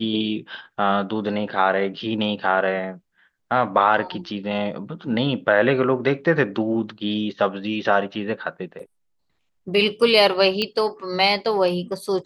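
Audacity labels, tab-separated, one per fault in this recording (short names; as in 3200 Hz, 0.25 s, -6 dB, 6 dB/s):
10.620000	10.620000	pop -11 dBFS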